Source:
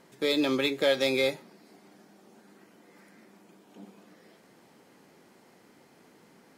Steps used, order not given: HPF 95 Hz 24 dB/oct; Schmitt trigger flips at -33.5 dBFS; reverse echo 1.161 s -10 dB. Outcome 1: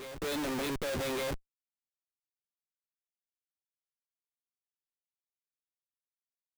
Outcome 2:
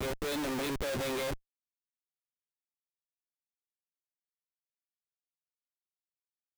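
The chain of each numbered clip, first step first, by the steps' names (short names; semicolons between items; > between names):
HPF > Schmitt trigger > reverse echo; reverse echo > HPF > Schmitt trigger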